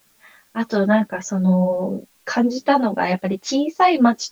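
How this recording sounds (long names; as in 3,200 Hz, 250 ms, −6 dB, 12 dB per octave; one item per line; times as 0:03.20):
a quantiser's noise floor 10 bits, dither triangular
a shimmering, thickened sound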